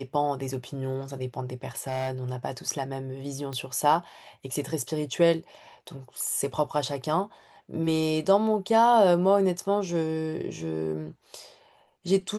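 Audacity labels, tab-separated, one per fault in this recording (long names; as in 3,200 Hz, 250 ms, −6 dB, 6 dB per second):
1.770000	2.360000	clipping −25 dBFS
3.530000	3.530000	click −22 dBFS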